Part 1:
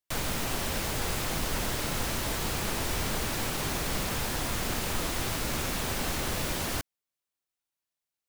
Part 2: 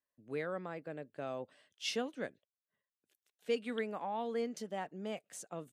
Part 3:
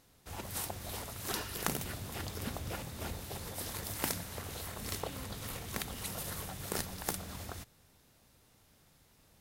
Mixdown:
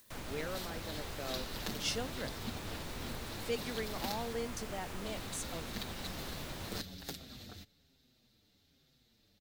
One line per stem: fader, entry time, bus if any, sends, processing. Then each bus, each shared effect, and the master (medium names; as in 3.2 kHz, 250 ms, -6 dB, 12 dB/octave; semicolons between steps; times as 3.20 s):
-12.0 dB, 0.00 s, no send, treble shelf 4.8 kHz -7 dB
-3.0 dB, 0.00 s, no send, treble shelf 4.4 kHz +11.5 dB; upward compressor, threshold -41 dBFS
-4.0 dB, 0.00 s, muted 4.33–5.06 s, no send, fifteen-band graphic EQ 250 Hz +7 dB, 1 kHz -9 dB, 4 kHz +11 dB, 10 kHz -11 dB; endless flanger 6.3 ms -1.2 Hz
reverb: none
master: none